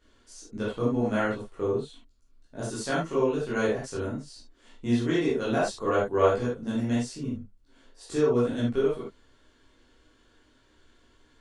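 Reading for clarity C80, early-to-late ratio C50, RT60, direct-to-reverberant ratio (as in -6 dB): 8.0 dB, 2.0 dB, not exponential, -9.0 dB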